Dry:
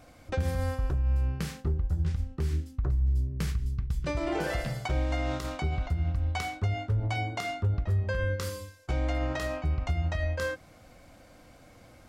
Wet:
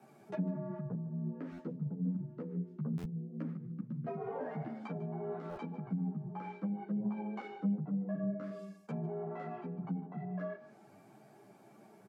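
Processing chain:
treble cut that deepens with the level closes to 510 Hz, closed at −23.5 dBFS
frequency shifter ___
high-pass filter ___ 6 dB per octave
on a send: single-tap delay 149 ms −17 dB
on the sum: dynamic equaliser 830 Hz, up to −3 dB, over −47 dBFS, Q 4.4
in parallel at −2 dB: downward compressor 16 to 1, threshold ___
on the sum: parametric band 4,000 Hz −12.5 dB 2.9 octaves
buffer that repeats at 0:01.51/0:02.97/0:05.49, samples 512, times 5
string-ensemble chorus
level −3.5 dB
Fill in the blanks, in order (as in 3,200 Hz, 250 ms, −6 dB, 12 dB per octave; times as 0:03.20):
+100 Hz, 230 Hz, −41 dBFS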